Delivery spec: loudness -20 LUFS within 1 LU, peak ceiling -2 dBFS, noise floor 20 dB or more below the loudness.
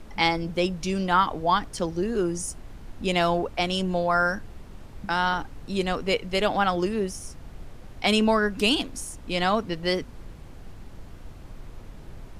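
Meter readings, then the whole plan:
noise floor -44 dBFS; noise floor target -46 dBFS; loudness -25.5 LUFS; peak -6.0 dBFS; loudness target -20.0 LUFS
-> noise print and reduce 6 dB; gain +5.5 dB; limiter -2 dBFS

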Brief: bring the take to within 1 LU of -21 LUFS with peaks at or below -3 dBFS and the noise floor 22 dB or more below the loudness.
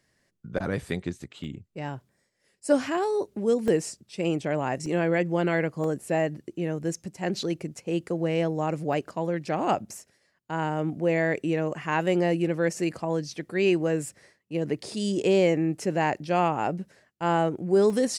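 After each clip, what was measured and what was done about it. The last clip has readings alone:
dropouts 7; longest dropout 2.0 ms; loudness -27.0 LUFS; peak -9.5 dBFS; loudness target -21.0 LUFS
-> interpolate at 1.44/3.68/4.86/5.84/8.93/14.06/17.9, 2 ms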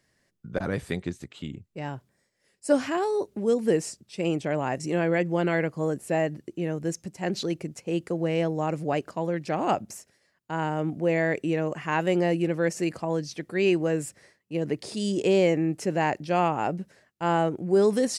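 dropouts 0; loudness -27.0 LUFS; peak -9.5 dBFS; loudness target -21.0 LUFS
-> gain +6 dB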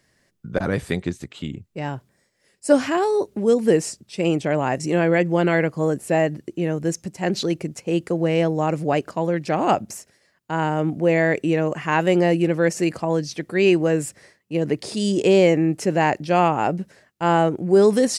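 loudness -21.0 LUFS; peak -3.5 dBFS; noise floor -65 dBFS

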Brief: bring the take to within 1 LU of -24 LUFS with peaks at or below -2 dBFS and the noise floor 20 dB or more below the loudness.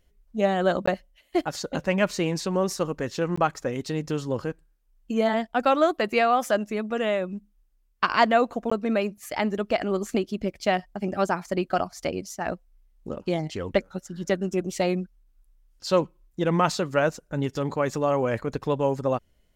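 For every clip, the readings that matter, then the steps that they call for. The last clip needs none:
dropouts 3; longest dropout 15 ms; loudness -26.0 LUFS; peak -6.0 dBFS; loudness target -24.0 LUFS
-> interpolate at 0.86/3.36/8.7, 15 ms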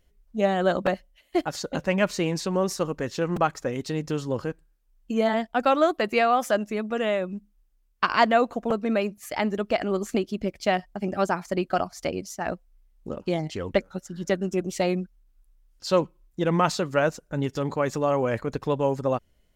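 dropouts 0; loudness -26.0 LUFS; peak -6.0 dBFS; loudness target -24.0 LUFS
-> gain +2 dB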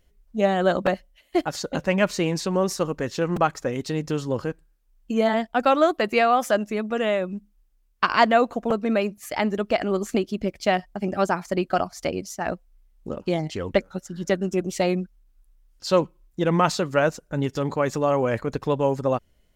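loudness -24.0 LUFS; peak -4.0 dBFS; noise floor -63 dBFS

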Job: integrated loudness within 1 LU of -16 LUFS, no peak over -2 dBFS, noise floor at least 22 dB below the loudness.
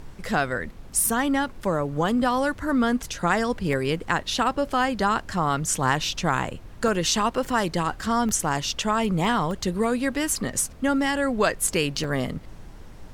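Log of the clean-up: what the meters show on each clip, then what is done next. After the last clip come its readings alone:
dropouts 5; longest dropout 1.1 ms; noise floor -43 dBFS; noise floor target -47 dBFS; loudness -24.5 LUFS; peak -7.5 dBFS; loudness target -16.0 LUFS
-> interpolate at 3.73/6.88/8.29/9.51/12.04, 1.1 ms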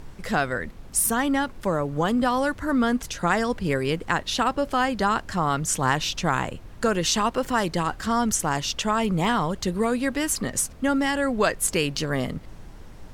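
dropouts 0; noise floor -43 dBFS; noise floor target -47 dBFS
-> noise print and reduce 6 dB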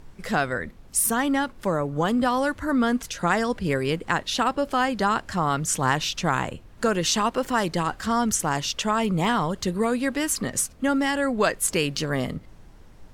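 noise floor -48 dBFS; loudness -24.5 LUFS; peak -7.5 dBFS; loudness target -16.0 LUFS
-> gain +8.5 dB; limiter -2 dBFS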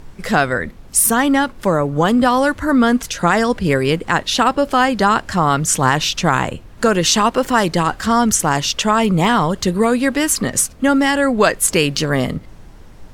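loudness -16.0 LUFS; peak -2.0 dBFS; noise floor -40 dBFS

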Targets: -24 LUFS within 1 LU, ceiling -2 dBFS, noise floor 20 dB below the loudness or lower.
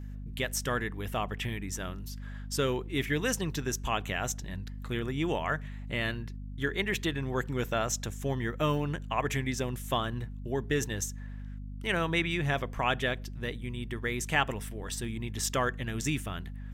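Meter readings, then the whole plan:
hum 50 Hz; harmonics up to 250 Hz; hum level -38 dBFS; loudness -32.5 LUFS; peak -12.0 dBFS; loudness target -24.0 LUFS
-> notches 50/100/150/200/250 Hz; gain +8.5 dB

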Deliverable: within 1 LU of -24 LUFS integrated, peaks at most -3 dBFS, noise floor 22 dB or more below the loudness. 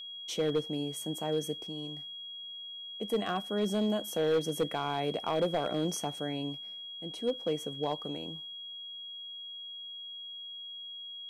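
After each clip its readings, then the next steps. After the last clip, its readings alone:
clipped 0.7%; flat tops at -22.5 dBFS; steady tone 3300 Hz; tone level -41 dBFS; loudness -34.5 LUFS; peak -22.5 dBFS; loudness target -24.0 LUFS
-> clip repair -22.5 dBFS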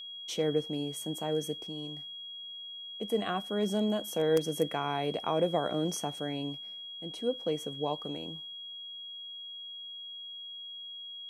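clipped 0.0%; steady tone 3300 Hz; tone level -41 dBFS
-> notch 3300 Hz, Q 30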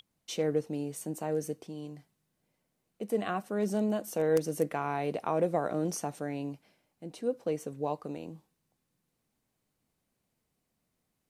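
steady tone none; loudness -33.0 LUFS; peak -13.5 dBFS; loudness target -24.0 LUFS
-> gain +9 dB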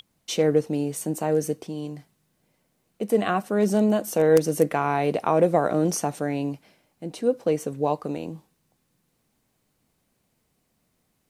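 loudness -24.0 LUFS; peak -4.5 dBFS; noise floor -72 dBFS

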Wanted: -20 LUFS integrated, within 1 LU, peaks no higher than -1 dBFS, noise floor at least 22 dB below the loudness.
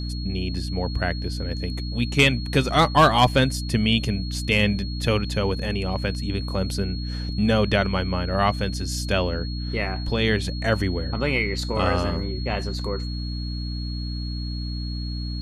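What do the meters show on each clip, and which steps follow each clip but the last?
hum 60 Hz; harmonics up to 300 Hz; hum level -27 dBFS; steady tone 4300 Hz; tone level -37 dBFS; loudness -24.0 LUFS; peak -6.0 dBFS; loudness target -20.0 LUFS
-> de-hum 60 Hz, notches 5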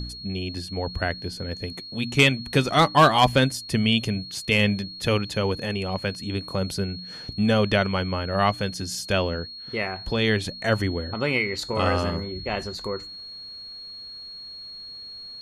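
hum none; steady tone 4300 Hz; tone level -37 dBFS
-> notch 4300 Hz, Q 30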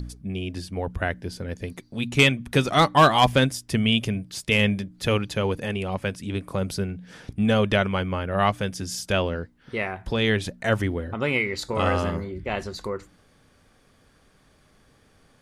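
steady tone none; loudness -24.5 LUFS; peak -7.0 dBFS; loudness target -20.0 LUFS
-> gain +4.5 dB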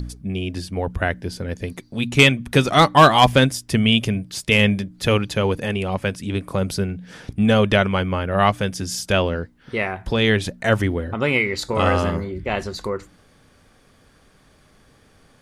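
loudness -20.0 LUFS; peak -2.5 dBFS; noise floor -55 dBFS

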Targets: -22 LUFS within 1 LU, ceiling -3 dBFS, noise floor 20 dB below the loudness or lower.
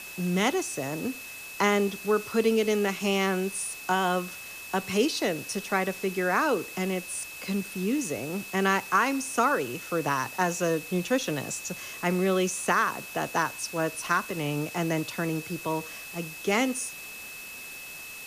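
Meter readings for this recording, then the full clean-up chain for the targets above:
steady tone 2600 Hz; tone level -41 dBFS; noise floor -42 dBFS; noise floor target -48 dBFS; loudness -28.0 LUFS; peak -10.5 dBFS; loudness target -22.0 LUFS
-> notch 2600 Hz, Q 30; denoiser 6 dB, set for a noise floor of -42 dBFS; gain +6 dB

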